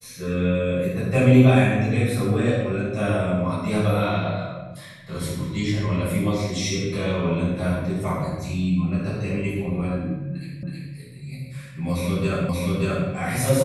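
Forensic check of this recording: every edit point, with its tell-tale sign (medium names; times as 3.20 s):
10.63 s: repeat of the last 0.32 s
12.49 s: repeat of the last 0.58 s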